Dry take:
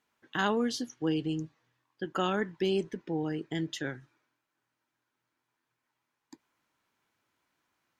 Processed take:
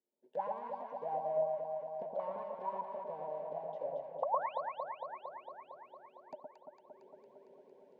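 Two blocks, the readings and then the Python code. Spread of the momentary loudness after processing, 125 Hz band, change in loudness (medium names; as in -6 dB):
21 LU, -22.0 dB, -7.0 dB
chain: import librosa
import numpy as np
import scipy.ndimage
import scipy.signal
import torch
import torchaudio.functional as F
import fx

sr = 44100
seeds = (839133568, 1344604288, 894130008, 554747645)

p1 = fx.halfwave_hold(x, sr)
p2 = fx.recorder_agc(p1, sr, target_db=-24.5, rise_db_per_s=24.0, max_gain_db=30)
p3 = fx.spec_paint(p2, sr, seeds[0], shape='rise', start_s=4.22, length_s=0.39, low_hz=470.0, high_hz=4700.0, level_db=-20.0)
p4 = fx.env_lowpass_down(p3, sr, base_hz=1900.0, full_db=-24.5)
p5 = fx.fixed_phaser(p4, sr, hz=330.0, stages=6)
p6 = fx.small_body(p5, sr, hz=(580.0, 910.0), ring_ms=45, db=11)
p7 = fx.auto_wah(p6, sr, base_hz=350.0, top_hz=1100.0, q=19.0, full_db=-22.0, direction='up')
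p8 = p7 + fx.echo_alternate(p7, sr, ms=114, hz=1000.0, feedback_pct=85, wet_db=-2.5, dry=0)
y = F.gain(torch.from_numpy(p8), 5.5).numpy()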